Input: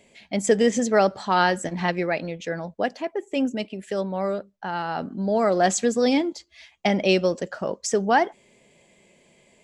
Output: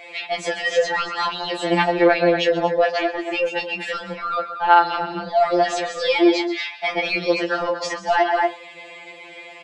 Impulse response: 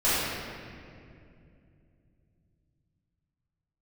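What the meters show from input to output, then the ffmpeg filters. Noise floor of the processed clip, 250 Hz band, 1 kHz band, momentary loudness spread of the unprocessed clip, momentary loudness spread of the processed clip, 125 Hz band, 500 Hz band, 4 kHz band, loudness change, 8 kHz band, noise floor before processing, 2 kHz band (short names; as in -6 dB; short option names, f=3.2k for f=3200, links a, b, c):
-41 dBFS, +0.5 dB, +5.5 dB, 11 LU, 11 LU, -3.5 dB, +3.0 dB, +6.5 dB, +3.5 dB, -6.5 dB, -60 dBFS, +6.5 dB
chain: -filter_complex "[0:a]asplit=2[a][b];[b]acompressor=threshold=-27dB:ratio=6,volume=0dB[c];[a][c]amix=inputs=2:normalize=0,highpass=410,aecho=1:1:130|234:0.15|0.168,acrusher=bits=10:mix=0:aa=0.000001,acrossover=split=2700|6700[d][e][f];[d]acompressor=threshold=-25dB:ratio=4[g];[e]acompressor=threshold=-36dB:ratio=4[h];[f]acompressor=threshold=-42dB:ratio=4[i];[g][h][i]amix=inputs=3:normalize=0,asplit=2[j][k];[k]highpass=f=720:p=1,volume=12dB,asoftclip=type=tanh:threshold=-12dB[l];[j][l]amix=inputs=2:normalize=0,lowpass=f=2k:p=1,volume=-6dB,highshelf=f=5.3k:t=q:w=1.5:g=-8,asplit=2[m][n];[n]adelay=24,volume=-13.5dB[o];[m][o]amix=inputs=2:normalize=0,aresample=22050,aresample=44100,alimiter=level_in=19.5dB:limit=-1dB:release=50:level=0:latency=1,afftfilt=real='re*2.83*eq(mod(b,8),0)':imag='im*2.83*eq(mod(b,8),0)':win_size=2048:overlap=0.75,volume=-7.5dB"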